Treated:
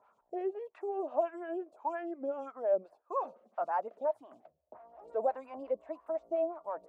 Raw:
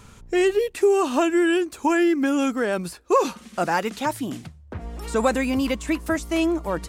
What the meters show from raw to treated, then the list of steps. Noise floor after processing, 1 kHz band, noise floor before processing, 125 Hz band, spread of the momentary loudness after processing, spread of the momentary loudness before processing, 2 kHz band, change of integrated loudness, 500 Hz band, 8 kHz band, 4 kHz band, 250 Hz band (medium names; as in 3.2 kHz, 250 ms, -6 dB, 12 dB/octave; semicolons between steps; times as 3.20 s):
-76 dBFS, -10.5 dB, -48 dBFS, under -30 dB, 8 LU, 11 LU, -24.0 dB, -13.5 dB, -11.0 dB, under -40 dB, under -35 dB, -22.5 dB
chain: peaking EQ 640 Hz +12.5 dB 0.42 oct; wah-wah 1.7 Hz 500–1100 Hz, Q 2.8; lamp-driven phase shifter 5.7 Hz; trim -8.5 dB